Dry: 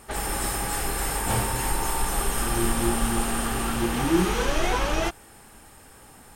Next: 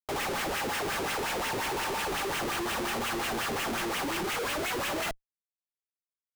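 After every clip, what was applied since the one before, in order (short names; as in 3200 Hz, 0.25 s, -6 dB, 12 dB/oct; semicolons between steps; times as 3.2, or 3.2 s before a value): wah 5.6 Hz 380–2900 Hz, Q 2.7; elliptic high-pass 160 Hz; Schmitt trigger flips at -47 dBFS; gain +6.5 dB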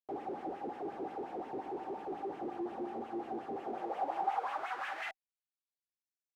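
bell 770 Hz +15 dB 0.27 oct; band-pass sweep 330 Hz -> 6700 Hz, 3.51–6.16; gain -3 dB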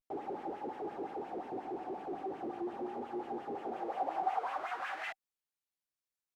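vibrato 0.39 Hz 60 cents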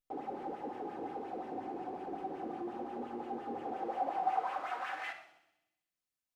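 thin delay 64 ms, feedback 68%, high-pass 3900 Hz, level -11 dB; shoebox room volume 2700 m³, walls furnished, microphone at 2 m; gain -2 dB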